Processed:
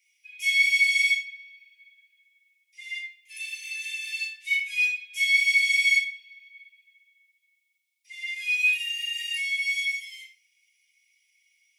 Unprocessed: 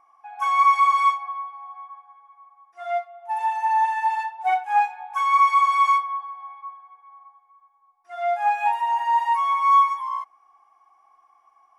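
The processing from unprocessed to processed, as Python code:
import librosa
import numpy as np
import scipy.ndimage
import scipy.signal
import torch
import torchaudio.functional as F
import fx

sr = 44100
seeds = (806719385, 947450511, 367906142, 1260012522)

y = scipy.signal.sosfilt(scipy.signal.butter(16, 2100.0, 'highpass', fs=sr, output='sos'), x)
y = fx.room_shoebox(y, sr, seeds[0], volume_m3=420.0, walls='furnished', distance_m=3.8)
y = y * 10.0 ** (7.5 / 20.0)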